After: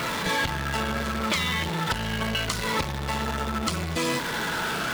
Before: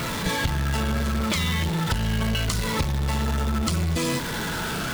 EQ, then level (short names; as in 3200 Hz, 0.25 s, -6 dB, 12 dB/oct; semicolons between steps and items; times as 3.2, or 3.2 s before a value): low shelf 130 Hz -8 dB; low shelf 440 Hz -7 dB; high shelf 4100 Hz -8 dB; +4.0 dB